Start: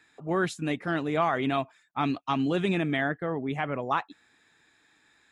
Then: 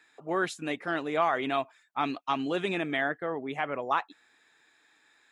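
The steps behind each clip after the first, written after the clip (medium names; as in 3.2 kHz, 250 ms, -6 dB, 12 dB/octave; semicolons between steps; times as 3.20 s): tone controls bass -13 dB, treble -1 dB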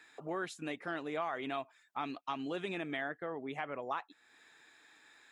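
compression 2:1, threshold -47 dBFS, peak gain reduction 14 dB; trim +2.5 dB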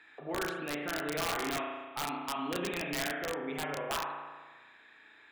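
resonant high shelf 4.3 kHz -11 dB, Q 1.5; spring tank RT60 1.4 s, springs 34 ms, chirp 80 ms, DRR -1 dB; integer overflow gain 26 dB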